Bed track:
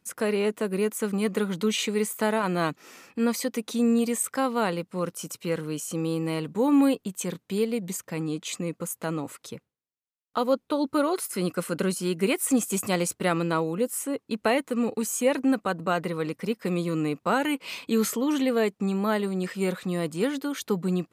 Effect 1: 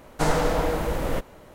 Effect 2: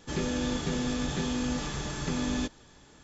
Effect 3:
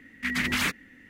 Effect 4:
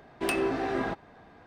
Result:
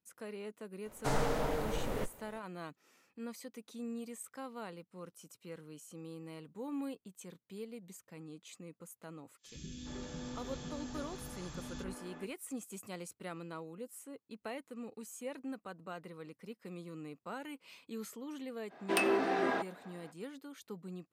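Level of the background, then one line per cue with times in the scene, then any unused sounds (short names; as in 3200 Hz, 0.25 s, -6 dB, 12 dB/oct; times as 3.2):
bed track -19.5 dB
0.85 add 1 -10 dB + frequency shift -20 Hz
9.36 add 2 -13 dB, fades 0.10 s + three bands offset in time highs, lows, mids 0.11/0.42 s, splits 300/2300 Hz
18.68 add 4 -1 dB, fades 0.05 s + HPF 290 Hz
not used: 3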